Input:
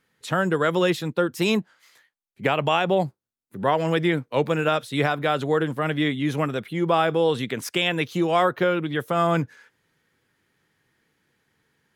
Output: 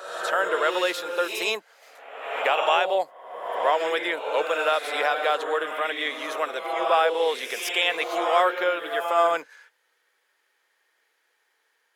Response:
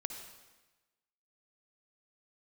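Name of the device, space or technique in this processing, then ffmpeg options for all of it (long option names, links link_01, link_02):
ghost voice: -filter_complex "[0:a]areverse[link_01];[1:a]atrim=start_sample=2205[link_02];[link_01][link_02]afir=irnorm=-1:irlink=0,areverse,highpass=frequency=500:width=0.5412,highpass=frequency=500:width=1.3066,volume=2dB"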